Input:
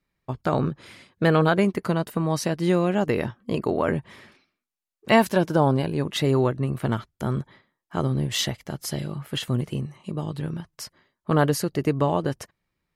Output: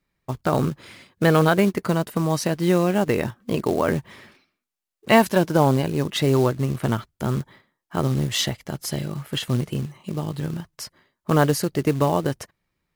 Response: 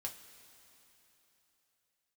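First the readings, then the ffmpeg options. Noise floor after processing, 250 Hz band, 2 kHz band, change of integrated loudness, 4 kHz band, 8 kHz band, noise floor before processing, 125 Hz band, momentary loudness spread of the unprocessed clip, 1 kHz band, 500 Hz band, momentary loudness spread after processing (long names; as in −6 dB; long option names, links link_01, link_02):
−82 dBFS, +2.0 dB, +2.0 dB, +2.0 dB, +2.0 dB, +3.0 dB, −84 dBFS, +2.0 dB, 13 LU, +2.0 dB, +2.0 dB, 13 LU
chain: -af "acrusher=bits=5:mode=log:mix=0:aa=0.000001,volume=2dB"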